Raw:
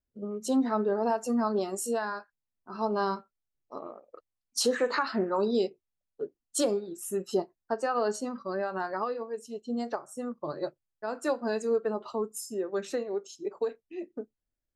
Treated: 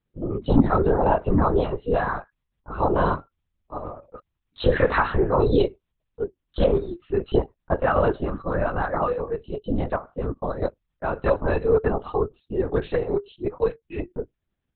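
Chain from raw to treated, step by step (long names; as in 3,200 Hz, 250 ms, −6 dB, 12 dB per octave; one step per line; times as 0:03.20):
linear-prediction vocoder at 8 kHz whisper
level +8 dB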